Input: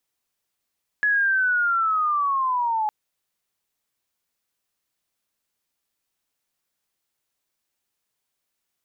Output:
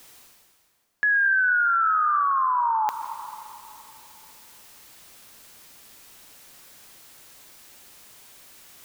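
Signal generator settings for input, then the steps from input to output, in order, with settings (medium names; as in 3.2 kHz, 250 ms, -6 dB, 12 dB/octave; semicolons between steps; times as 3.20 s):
sweep linear 1.7 kHz -> 840 Hz -17 dBFS -> -20.5 dBFS 1.86 s
reverse; upward compressor, threshold -26 dBFS; reverse; plate-style reverb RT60 2.9 s, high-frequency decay 0.65×, pre-delay 115 ms, DRR 9.5 dB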